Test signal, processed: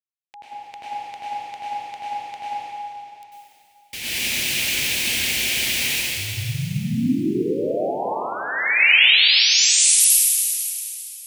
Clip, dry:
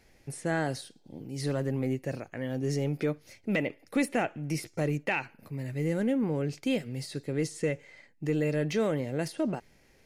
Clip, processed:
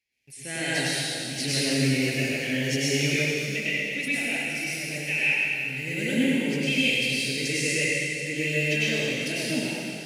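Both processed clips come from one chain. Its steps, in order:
noise gate −54 dBFS, range −16 dB
high-pass filter 65 Hz
high shelf with overshoot 1,700 Hz +12.5 dB, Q 3
automatic gain control gain up to 14 dB
dense smooth reverb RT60 2.8 s, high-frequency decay 1×, pre-delay 85 ms, DRR −9.5 dB
level −17 dB

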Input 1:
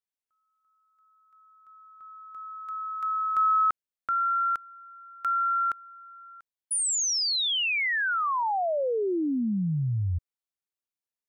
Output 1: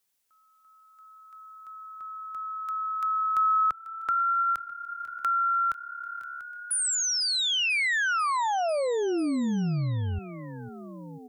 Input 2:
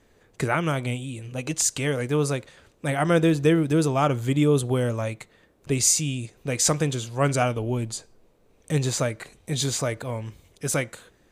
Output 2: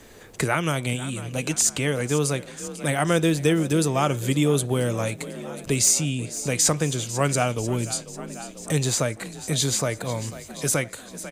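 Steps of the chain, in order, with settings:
high-shelf EQ 4,300 Hz +7.5 dB
hard clipping −6 dBFS
on a send: echo with shifted repeats 494 ms, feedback 60%, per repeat +35 Hz, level −18.5 dB
on the sum: multiband upward and downward compressor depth 40%

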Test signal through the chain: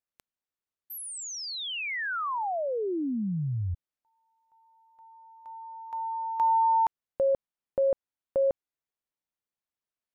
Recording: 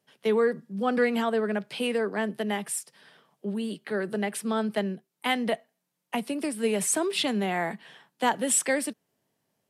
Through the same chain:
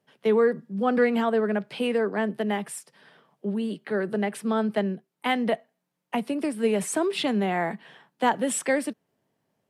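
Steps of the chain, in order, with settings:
high-shelf EQ 3,200 Hz −10 dB
level +3 dB

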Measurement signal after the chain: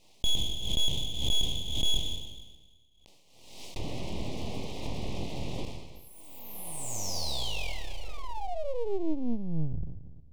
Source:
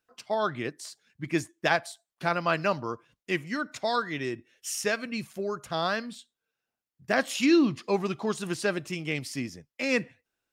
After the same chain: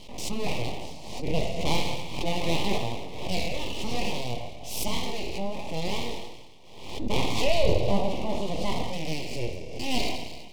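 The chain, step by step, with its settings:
peak hold with a decay on every bin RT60 1.35 s
low-pass filter 3,000 Hz 12 dB per octave
low-shelf EQ 83 Hz +6 dB
on a send: flutter between parallel walls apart 4.3 metres, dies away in 0.21 s
on the sum: dynamic equaliser 170 Hz, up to +4 dB, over −42 dBFS, Q 1.2
full-wave rectification
Butterworth band-reject 1,500 Hz, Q 0.84
background raised ahead of every attack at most 58 dB per second

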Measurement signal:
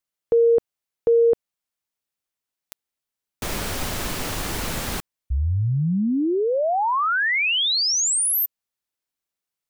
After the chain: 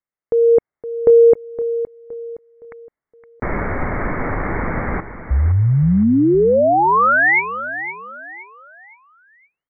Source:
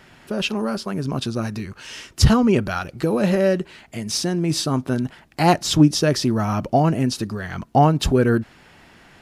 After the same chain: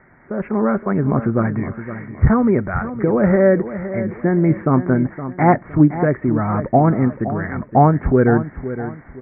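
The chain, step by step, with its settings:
Chebyshev low-pass filter 2,200 Hz, order 8
automatic gain control gain up to 9 dB
on a send: repeating echo 516 ms, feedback 35%, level −12 dB
on the sum: level −1 dB

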